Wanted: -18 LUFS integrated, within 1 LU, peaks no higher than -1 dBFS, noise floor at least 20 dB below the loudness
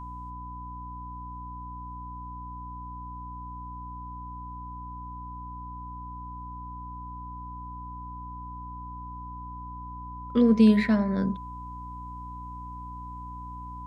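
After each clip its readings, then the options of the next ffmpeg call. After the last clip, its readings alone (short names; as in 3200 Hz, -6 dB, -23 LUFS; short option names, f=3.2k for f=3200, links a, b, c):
hum 60 Hz; harmonics up to 300 Hz; hum level -40 dBFS; steady tone 1000 Hz; tone level -39 dBFS; loudness -32.0 LUFS; peak -9.5 dBFS; loudness target -18.0 LUFS
-> -af "bandreject=f=60:t=h:w=4,bandreject=f=120:t=h:w=4,bandreject=f=180:t=h:w=4,bandreject=f=240:t=h:w=4,bandreject=f=300:t=h:w=4"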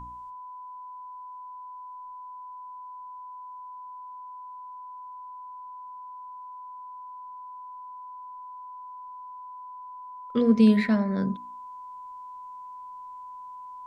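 hum none; steady tone 1000 Hz; tone level -39 dBFS
-> -af "bandreject=f=1k:w=30"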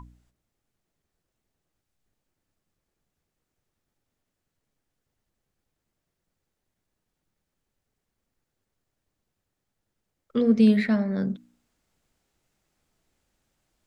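steady tone none; loudness -23.0 LUFS; peak -9.5 dBFS; loudness target -18.0 LUFS
-> -af "volume=5dB"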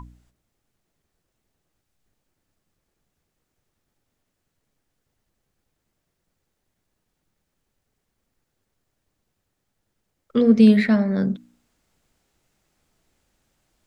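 loudness -18.0 LUFS; peak -4.5 dBFS; noise floor -78 dBFS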